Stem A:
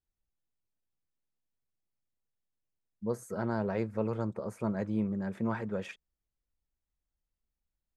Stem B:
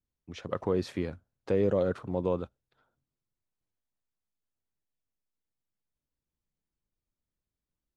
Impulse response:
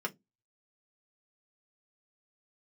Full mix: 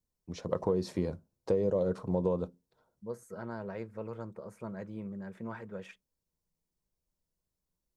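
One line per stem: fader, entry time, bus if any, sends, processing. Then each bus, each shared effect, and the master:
−8.0 dB, 0.00 s, send −15 dB, no processing
+2.0 dB, 0.00 s, send −11.5 dB, flat-topped bell 2,100 Hz −10.5 dB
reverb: on, RT60 0.15 s, pre-delay 3 ms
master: downward compressor 6 to 1, threshold −25 dBFS, peak gain reduction 8 dB

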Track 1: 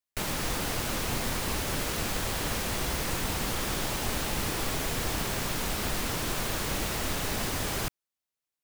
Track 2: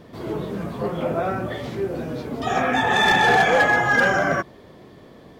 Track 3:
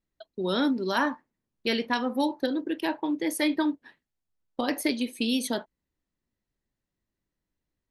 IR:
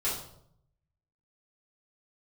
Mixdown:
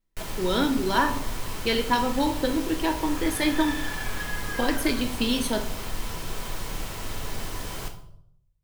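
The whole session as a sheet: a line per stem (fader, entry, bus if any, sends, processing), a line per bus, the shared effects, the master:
−8.5 dB, 0.00 s, send −8.5 dB, no processing
−16.0 dB, 0.60 s, no send, high-pass filter 1,200 Hz 24 dB per octave
−0.5 dB, 0.00 s, send −11 dB, no processing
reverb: on, RT60 0.70 s, pre-delay 4 ms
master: low-shelf EQ 62 Hz +6.5 dB; hollow resonant body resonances 1,000/3,100 Hz, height 10 dB, ringing for 95 ms

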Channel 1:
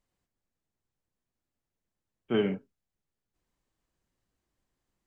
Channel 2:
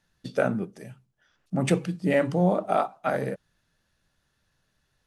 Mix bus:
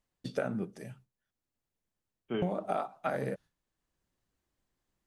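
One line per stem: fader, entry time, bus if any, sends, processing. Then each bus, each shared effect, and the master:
−1.0 dB, 0.00 s, no send, automatic ducking −6 dB, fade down 0.35 s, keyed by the second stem
−2.5 dB, 0.00 s, muted 0:01.31–0:02.42, no send, noise gate with hold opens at −49 dBFS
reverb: not used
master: downward compressor 10 to 1, threshold −28 dBFS, peak gain reduction 10 dB

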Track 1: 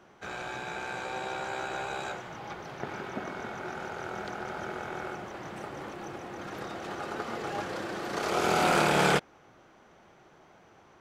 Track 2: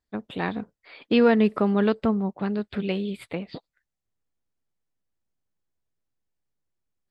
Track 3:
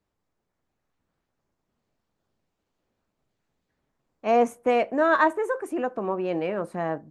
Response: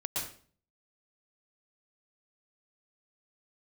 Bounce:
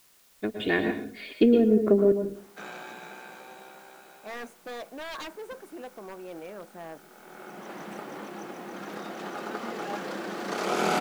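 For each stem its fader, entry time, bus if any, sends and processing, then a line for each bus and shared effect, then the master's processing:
0.0 dB, 2.35 s, no send, low shelf with overshoot 130 Hz −13.5 dB, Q 3; automatic ducking −19 dB, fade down 1.80 s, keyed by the third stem
+2.0 dB, 0.30 s, muted 0:02.12–0:04.35, send −6 dB, treble cut that deepens with the level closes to 350 Hz, closed at −16.5 dBFS; flat-topped bell 990 Hz −11.5 dB 1.1 octaves; comb filter 2.8 ms, depth 53%
−12.5 dB, 0.00 s, no send, wave folding −20 dBFS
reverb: on, RT60 0.45 s, pre-delay 109 ms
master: parametric band 120 Hz −5.5 dB 1.9 octaves; bit-depth reduction 10 bits, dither triangular

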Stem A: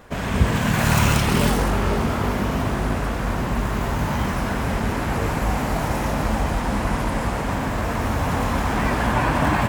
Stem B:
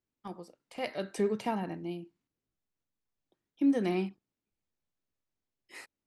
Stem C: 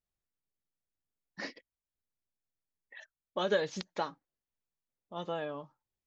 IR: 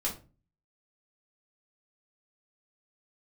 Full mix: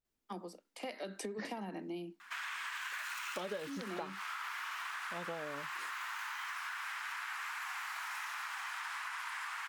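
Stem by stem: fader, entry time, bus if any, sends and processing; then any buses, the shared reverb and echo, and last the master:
−0.5 dB, 2.20 s, bus A, no send, inverse Chebyshev high-pass filter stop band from 600 Hz, stop band 40 dB
+0.5 dB, 0.05 s, bus A, no send, high-shelf EQ 3,700 Hz +11.5 dB
+1.0 dB, 0.00 s, no bus, no send, no processing
bus A: 0.0 dB, Butterworth high-pass 180 Hz 96 dB per octave; downward compressor 6 to 1, threshold −34 dBFS, peak gain reduction 13.5 dB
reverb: not used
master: high-shelf EQ 4,200 Hz −8 dB; downward compressor 6 to 1, threshold −38 dBFS, peak gain reduction 14.5 dB

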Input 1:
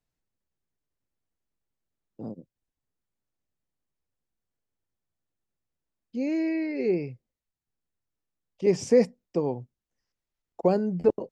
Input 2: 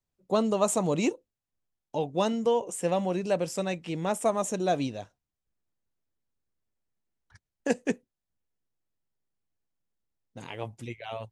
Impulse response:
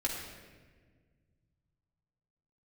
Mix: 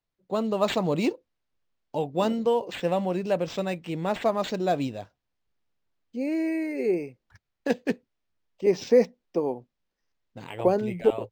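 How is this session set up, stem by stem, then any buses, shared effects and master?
−3.0 dB, 0.00 s, no send, parametric band 120 Hz −13.5 dB 1.2 octaves
−3.5 dB, 0.00 s, no send, no processing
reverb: not used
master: automatic gain control gain up to 5 dB; linearly interpolated sample-rate reduction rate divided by 4×

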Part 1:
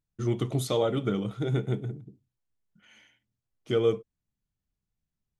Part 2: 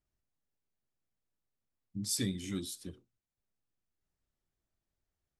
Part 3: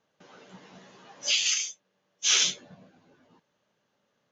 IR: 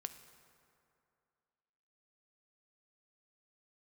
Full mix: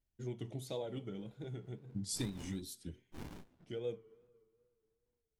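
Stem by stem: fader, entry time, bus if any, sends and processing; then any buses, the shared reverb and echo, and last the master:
−18.0 dB, 0.00 s, bus A, send −5.5 dB, automatic ducking −7 dB, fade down 0.30 s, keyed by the second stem
+1.5 dB, 0.00 s, bus A, send −22.5 dB, low-shelf EQ 160 Hz +7 dB; expander for the loud parts 1.5 to 1, over −43 dBFS
−13.0 dB, 0.90 s, no bus, no send, running median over 9 samples; windowed peak hold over 65 samples
bus A: 0.0 dB, Butterworth band-reject 1,200 Hz, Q 3.2; downward compressor, threshold −36 dBFS, peak gain reduction 11 dB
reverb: on, RT60 2.5 s, pre-delay 3 ms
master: tape wow and flutter 89 cents; speech leveller within 4 dB 2 s; amplitude tremolo 4.1 Hz, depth 30%

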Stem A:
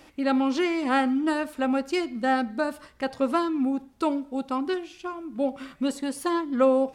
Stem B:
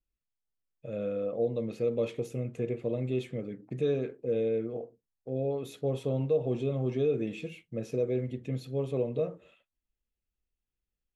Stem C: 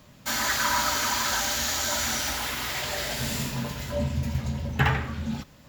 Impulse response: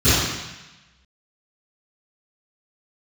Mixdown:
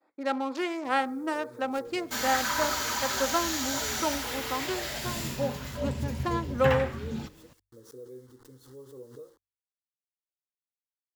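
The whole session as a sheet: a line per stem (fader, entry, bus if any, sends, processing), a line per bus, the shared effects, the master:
−1.5 dB, 0.00 s, no send, adaptive Wiener filter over 15 samples; downward expander −46 dBFS; high-pass filter 430 Hz 12 dB per octave
−14.0 dB, 0.00 s, no send, bit-depth reduction 8 bits, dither none; phaser with its sweep stopped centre 660 Hz, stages 6; background raised ahead of every attack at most 88 dB per second
−4.5 dB, 1.85 s, no send, no processing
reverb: not used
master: hum removal 48.46 Hz, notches 2

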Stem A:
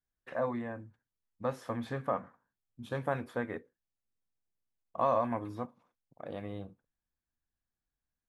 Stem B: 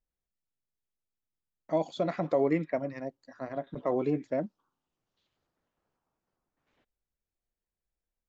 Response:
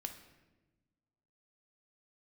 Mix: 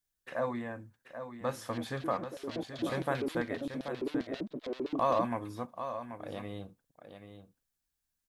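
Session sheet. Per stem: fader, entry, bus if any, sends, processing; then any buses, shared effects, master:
−1.0 dB, 0.00 s, no send, echo send −9.5 dB, high-shelf EQ 3,000 Hz +11.5 dB
−4.5 dB, 0.00 s, no send, echo send −5 dB, leveller curve on the samples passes 5; auto-filter band-pass square 7.6 Hz 320–3,900 Hz; automatic ducking −11 dB, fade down 0.75 s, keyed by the first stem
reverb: not used
echo: single-tap delay 783 ms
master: no processing

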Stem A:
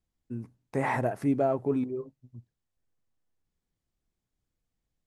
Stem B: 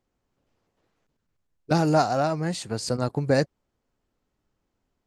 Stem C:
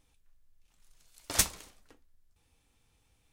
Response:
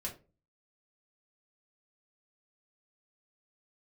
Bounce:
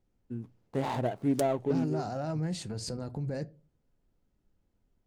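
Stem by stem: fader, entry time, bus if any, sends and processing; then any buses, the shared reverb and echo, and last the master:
−1.5 dB, 0.00 s, no send, running median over 25 samples
−8.0 dB, 0.00 s, send −10 dB, low-shelf EQ 340 Hz +11 dB; notch filter 1,100 Hz, Q 9.7; brickwall limiter −20 dBFS, peak gain reduction 15.5 dB
−4.0 dB, 0.00 s, no send, harmonic generator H 3 −9 dB, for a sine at −5 dBFS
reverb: on, RT60 0.30 s, pre-delay 4 ms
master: highs frequency-modulated by the lows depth 0.12 ms

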